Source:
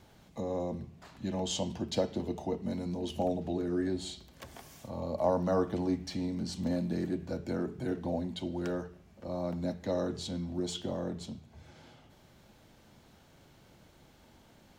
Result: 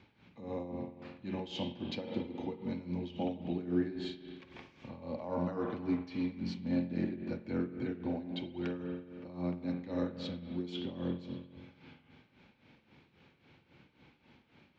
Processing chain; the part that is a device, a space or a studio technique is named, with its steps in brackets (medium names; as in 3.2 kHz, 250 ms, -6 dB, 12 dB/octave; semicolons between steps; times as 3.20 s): combo amplifier with spring reverb and tremolo (spring tank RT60 1.9 s, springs 45 ms, chirp 80 ms, DRR 4 dB; tremolo 3.7 Hz, depth 72%; cabinet simulation 75–4400 Hz, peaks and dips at 260 Hz +4 dB, 650 Hz -8 dB, 2.4 kHz +10 dB); trim -2.5 dB